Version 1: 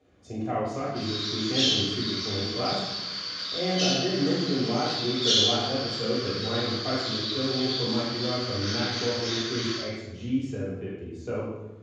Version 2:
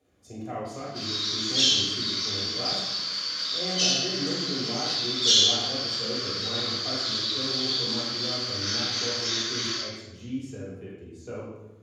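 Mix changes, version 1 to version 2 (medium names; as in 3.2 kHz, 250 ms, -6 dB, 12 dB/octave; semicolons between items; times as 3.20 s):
speech -6.0 dB; master: remove distance through air 100 m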